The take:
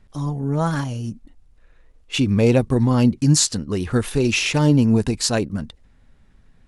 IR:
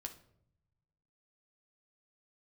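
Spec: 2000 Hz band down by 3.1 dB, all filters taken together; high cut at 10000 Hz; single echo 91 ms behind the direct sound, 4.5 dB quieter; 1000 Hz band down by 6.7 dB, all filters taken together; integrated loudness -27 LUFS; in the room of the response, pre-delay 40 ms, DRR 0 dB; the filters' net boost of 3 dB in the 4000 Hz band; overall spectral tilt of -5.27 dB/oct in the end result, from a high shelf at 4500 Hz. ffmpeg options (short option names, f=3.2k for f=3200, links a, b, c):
-filter_complex "[0:a]lowpass=10k,equalizer=f=1k:t=o:g=-7.5,equalizer=f=2k:t=o:g=-6,equalizer=f=4k:t=o:g=9,highshelf=f=4.5k:g=-5.5,aecho=1:1:91:0.596,asplit=2[a][b];[1:a]atrim=start_sample=2205,adelay=40[c];[b][c]afir=irnorm=-1:irlink=0,volume=3.5dB[d];[a][d]amix=inputs=2:normalize=0,volume=-12dB"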